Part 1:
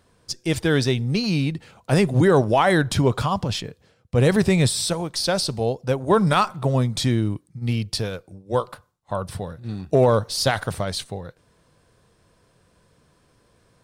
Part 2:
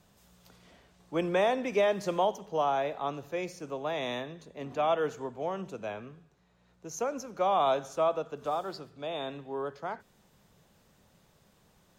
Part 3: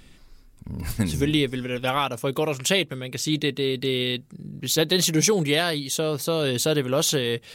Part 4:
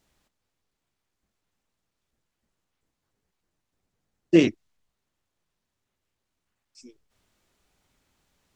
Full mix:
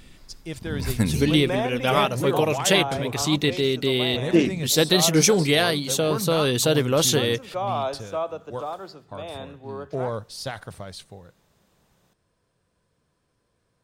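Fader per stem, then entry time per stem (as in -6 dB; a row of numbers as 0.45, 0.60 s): -11.5, -0.5, +2.0, -1.5 dB; 0.00, 0.15, 0.00, 0.00 s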